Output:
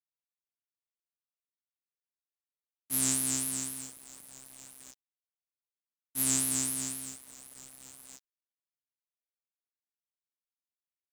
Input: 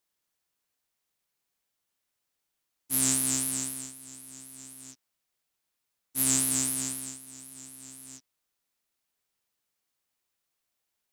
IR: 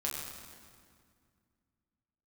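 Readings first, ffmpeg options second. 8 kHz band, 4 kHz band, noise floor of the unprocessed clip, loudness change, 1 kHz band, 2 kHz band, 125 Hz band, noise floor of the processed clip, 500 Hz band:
-3.0 dB, -3.0 dB, -83 dBFS, -3.0 dB, -2.5 dB, -3.0 dB, -3.0 dB, under -85 dBFS, -3.0 dB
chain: -af "acrusher=bits=6:mix=0:aa=0.5,volume=-3dB"

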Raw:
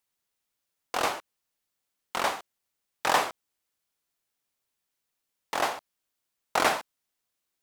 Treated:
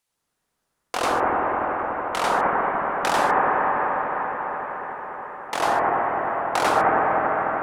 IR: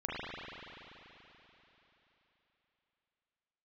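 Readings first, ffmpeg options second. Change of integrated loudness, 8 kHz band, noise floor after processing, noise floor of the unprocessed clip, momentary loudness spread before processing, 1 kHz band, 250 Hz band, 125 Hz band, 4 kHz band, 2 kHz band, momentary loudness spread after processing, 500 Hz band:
+6.0 dB, +1.0 dB, -78 dBFS, -83 dBFS, 11 LU, +11.5 dB, +12.0 dB, +13.0 dB, +1.0 dB, +8.0 dB, 11 LU, +11.5 dB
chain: -filter_complex "[0:a]acompressor=threshold=-26dB:ratio=3[a];[1:a]atrim=start_sample=2205,asetrate=22050,aresample=44100[b];[a][b]afir=irnorm=-1:irlink=0,volume=3.5dB"

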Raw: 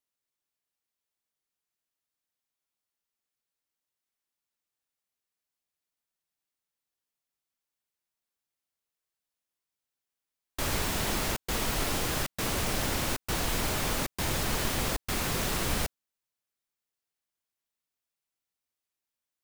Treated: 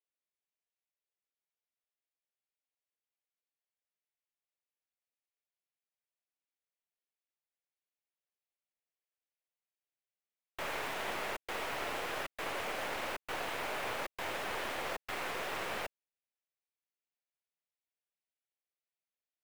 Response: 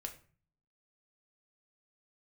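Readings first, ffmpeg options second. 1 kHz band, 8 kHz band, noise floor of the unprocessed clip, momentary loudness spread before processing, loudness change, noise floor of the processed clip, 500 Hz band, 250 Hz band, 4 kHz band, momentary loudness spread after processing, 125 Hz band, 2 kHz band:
-3.5 dB, -16.5 dB, under -85 dBFS, 2 LU, -8.0 dB, under -85 dBFS, -4.5 dB, -14.0 dB, -9.5 dB, 2 LU, -21.0 dB, -3.5 dB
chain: -filter_complex "[0:a]highpass=f=170:p=1,acrossover=split=460 2600:gain=0.0794 1 0.0891[a][b][c];[a][b][c]amix=inputs=3:normalize=0,acrossover=split=720|1900[d][e][f];[e]acrusher=bits=5:dc=4:mix=0:aa=0.000001[g];[d][g][f]amix=inputs=3:normalize=0,volume=1dB"

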